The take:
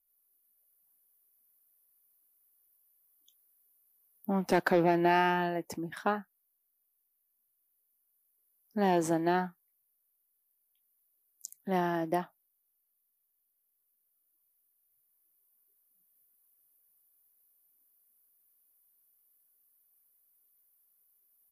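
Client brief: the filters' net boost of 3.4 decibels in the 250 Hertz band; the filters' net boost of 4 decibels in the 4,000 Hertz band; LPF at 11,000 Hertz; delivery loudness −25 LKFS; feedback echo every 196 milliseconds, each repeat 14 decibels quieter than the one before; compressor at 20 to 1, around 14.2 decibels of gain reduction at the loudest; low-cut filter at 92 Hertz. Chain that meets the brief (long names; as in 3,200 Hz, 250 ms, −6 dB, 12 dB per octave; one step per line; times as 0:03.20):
high-pass filter 92 Hz
low-pass filter 11,000 Hz
parametric band 250 Hz +6 dB
parametric band 4,000 Hz +6 dB
downward compressor 20 to 1, threshold −33 dBFS
repeating echo 196 ms, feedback 20%, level −14 dB
level +14.5 dB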